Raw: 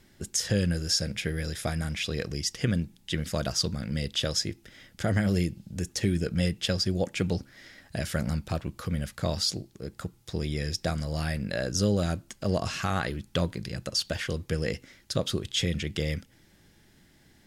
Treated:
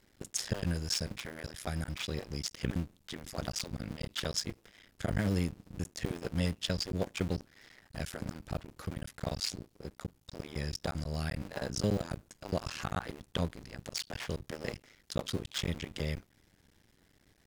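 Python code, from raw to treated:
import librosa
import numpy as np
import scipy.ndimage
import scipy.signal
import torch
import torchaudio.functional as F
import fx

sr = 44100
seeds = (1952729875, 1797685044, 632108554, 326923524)

y = fx.cycle_switch(x, sr, every=2, mode='muted')
y = y * librosa.db_to_amplitude(-4.5)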